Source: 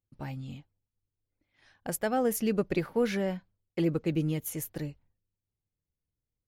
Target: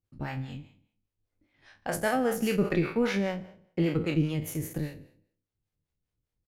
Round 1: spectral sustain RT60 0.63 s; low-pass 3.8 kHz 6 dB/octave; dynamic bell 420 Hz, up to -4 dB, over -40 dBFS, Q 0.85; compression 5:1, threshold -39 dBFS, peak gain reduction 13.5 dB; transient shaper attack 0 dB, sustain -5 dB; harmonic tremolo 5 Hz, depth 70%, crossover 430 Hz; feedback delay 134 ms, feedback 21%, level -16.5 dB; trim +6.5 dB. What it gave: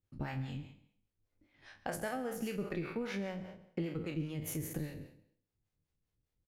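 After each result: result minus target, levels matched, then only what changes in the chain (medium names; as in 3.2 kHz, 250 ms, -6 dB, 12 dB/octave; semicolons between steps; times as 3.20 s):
compression: peak gain reduction +13.5 dB; echo-to-direct +9.5 dB
remove: compression 5:1, threshold -39 dBFS, peak gain reduction 13.5 dB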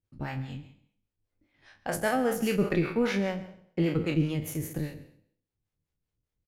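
echo-to-direct +9.5 dB
change: feedback delay 134 ms, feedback 21%, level -26 dB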